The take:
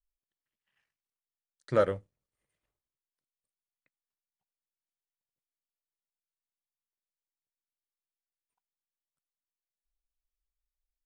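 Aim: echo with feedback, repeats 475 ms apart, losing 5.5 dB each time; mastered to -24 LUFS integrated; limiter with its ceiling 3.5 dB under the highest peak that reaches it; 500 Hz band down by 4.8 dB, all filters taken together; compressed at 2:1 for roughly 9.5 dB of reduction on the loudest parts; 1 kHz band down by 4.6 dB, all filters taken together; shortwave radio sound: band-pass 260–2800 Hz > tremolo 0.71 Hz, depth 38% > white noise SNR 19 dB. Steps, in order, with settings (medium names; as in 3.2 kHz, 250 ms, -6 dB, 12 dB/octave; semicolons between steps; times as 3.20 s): peaking EQ 500 Hz -3.5 dB; peaking EQ 1 kHz -6 dB; compression 2:1, threshold -41 dBFS; peak limiter -28.5 dBFS; band-pass 260–2800 Hz; feedback delay 475 ms, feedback 53%, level -5.5 dB; tremolo 0.71 Hz, depth 38%; white noise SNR 19 dB; trim +28 dB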